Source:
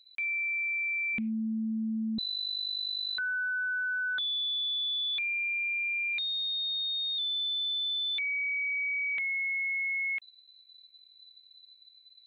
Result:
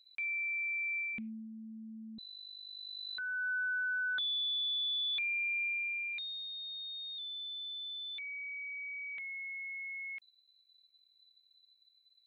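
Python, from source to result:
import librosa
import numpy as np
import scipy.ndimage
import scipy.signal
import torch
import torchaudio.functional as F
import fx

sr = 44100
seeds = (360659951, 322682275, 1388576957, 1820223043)

y = fx.gain(x, sr, db=fx.line((0.98, -4.5), (1.49, -15.5), (2.62, -15.5), (3.51, -3.0), (5.63, -3.0), (6.49, -11.0)))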